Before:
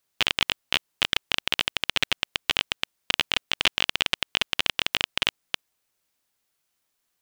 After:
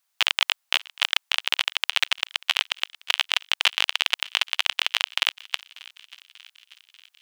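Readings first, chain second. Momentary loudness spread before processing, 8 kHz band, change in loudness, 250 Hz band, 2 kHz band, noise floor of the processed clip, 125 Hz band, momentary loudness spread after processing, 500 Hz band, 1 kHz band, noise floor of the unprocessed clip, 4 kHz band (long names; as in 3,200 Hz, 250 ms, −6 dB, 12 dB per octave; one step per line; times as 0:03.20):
4 LU, +2.0 dB, +2.0 dB, below −25 dB, +2.0 dB, −75 dBFS, below −40 dB, 4 LU, −6.0 dB, +1.5 dB, −77 dBFS, +2.0 dB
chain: high-pass filter 700 Hz 24 dB per octave
on a send: feedback echo with a high-pass in the loop 589 ms, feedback 65%, high-pass 1,100 Hz, level −21 dB
on the sum: level +2 dB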